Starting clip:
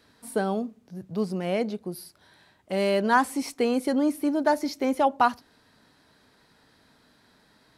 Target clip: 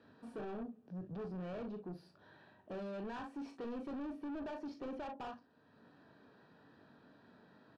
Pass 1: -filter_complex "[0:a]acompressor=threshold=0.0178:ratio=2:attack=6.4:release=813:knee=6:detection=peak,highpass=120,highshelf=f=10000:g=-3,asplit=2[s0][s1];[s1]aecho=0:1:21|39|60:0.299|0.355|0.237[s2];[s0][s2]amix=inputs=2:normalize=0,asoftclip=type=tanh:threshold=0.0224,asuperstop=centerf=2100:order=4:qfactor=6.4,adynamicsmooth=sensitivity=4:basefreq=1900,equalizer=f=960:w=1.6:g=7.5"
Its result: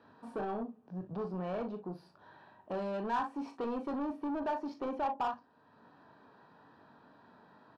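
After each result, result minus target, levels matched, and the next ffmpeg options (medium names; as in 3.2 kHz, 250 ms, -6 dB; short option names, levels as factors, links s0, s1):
1 kHz band +5.5 dB; saturation: distortion -4 dB
-filter_complex "[0:a]acompressor=threshold=0.0178:ratio=2:attack=6.4:release=813:knee=6:detection=peak,highpass=120,highshelf=f=10000:g=-3,asplit=2[s0][s1];[s1]aecho=0:1:21|39|60:0.299|0.355|0.237[s2];[s0][s2]amix=inputs=2:normalize=0,asoftclip=type=tanh:threshold=0.0224,asuperstop=centerf=2100:order=4:qfactor=6.4,adynamicsmooth=sensitivity=4:basefreq=1900,equalizer=f=960:w=1.6:g=-2.5"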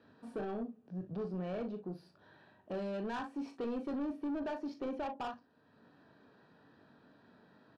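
saturation: distortion -4 dB
-filter_complex "[0:a]acompressor=threshold=0.0178:ratio=2:attack=6.4:release=813:knee=6:detection=peak,highpass=120,highshelf=f=10000:g=-3,asplit=2[s0][s1];[s1]aecho=0:1:21|39|60:0.299|0.355|0.237[s2];[s0][s2]amix=inputs=2:normalize=0,asoftclip=type=tanh:threshold=0.01,asuperstop=centerf=2100:order=4:qfactor=6.4,adynamicsmooth=sensitivity=4:basefreq=1900,equalizer=f=960:w=1.6:g=-2.5"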